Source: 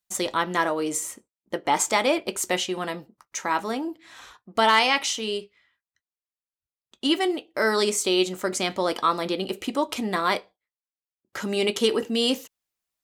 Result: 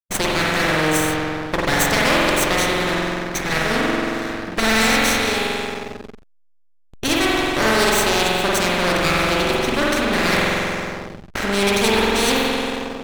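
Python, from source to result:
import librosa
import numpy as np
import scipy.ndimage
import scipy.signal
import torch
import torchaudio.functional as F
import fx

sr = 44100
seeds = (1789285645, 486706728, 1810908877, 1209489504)

y = fx.lower_of_two(x, sr, delay_ms=0.49)
y = fx.high_shelf(y, sr, hz=2000.0, db=-10.0)
y = fx.rev_spring(y, sr, rt60_s=1.8, pass_ms=(45,), chirp_ms=50, drr_db=-5.5)
y = fx.backlash(y, sr, play_db=-39.5)
y = fx.spectral_comp(y, sr, ratio=2.0)
y = y * librosa.db_to_amplitude(5.5)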